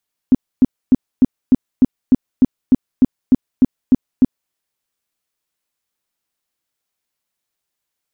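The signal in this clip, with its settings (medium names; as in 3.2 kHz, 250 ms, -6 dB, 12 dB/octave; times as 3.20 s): tone bursts 256 Hz, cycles 7, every 0.30 s, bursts 14, -5 dBFS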